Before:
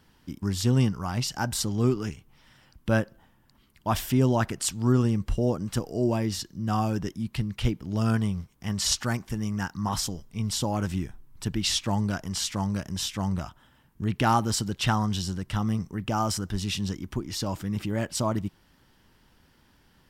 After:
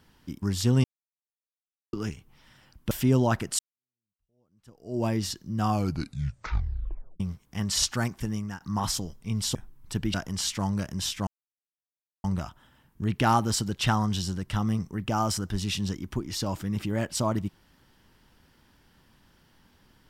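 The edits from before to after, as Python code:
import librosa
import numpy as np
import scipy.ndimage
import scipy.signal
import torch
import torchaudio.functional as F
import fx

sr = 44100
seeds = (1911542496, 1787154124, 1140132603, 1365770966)

y = fx.edit(x, sr, fx.silence(start_s=0.84, length_s=1.09),
    fx.cut(start_s=2.91, length_s=1.09),
    fx.fade_in_span(start_s=4.68, length_s=1.46, curve='exp'),
    fx.tape_stop(start_s=6.78, length_s=1.51),
    fx.fade_out_to(start_s=9.39, length_s=0.31, floor_db=-13.0),
    fx.cut(start_s=10.64, length_s=0.42),
    fx.cut(start_s=11.65, length_s=0.46),
    fx.insert_silence(at_s=13.24, length_s=0.97), tone=tone)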